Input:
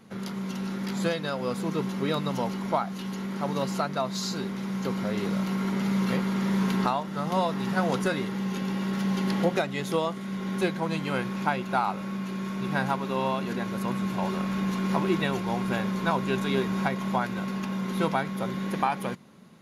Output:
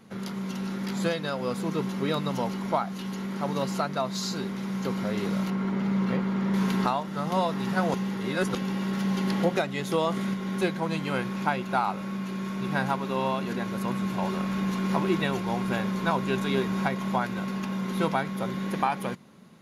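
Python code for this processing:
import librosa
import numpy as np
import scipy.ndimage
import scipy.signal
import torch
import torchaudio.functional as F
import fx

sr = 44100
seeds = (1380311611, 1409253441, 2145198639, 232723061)

y = fx.lowpass(x, sr, hz=1900.0, slope=6, at=(5.5, 6.54))
y = fx.env_flatten(y, sr, amount_pct=50, at=(9.92, 10.34))
y = fx.edit(y, sr, fx.reverse_span(start_s=7.94, length_s=0.61), tone=tone)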